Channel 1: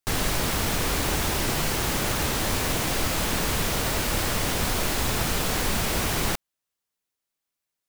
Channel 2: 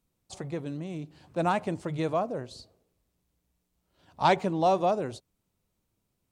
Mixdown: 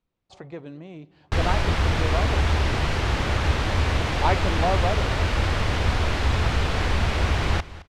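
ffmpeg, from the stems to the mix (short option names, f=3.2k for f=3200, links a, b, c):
-filter_complex "[0:a]equalizer=f=78:t=o:w=1.2:g=14,adelay=1250,volume=2dB,asplit=2[a][b];[b]volume=-17.5dB[c];[1:a]volume=0dB,asplit=2[d][e];[e]volume=-24dB[f];[c][f]amix=inputs=2:normalize=0,aecho=0:1:216|432|648:1|0.16|0.0256[g];[a][d][g]amix=inputs=3:normalize=0,lowpass=3.4k,equalizer=f=150:w=0.52:g=-5.5"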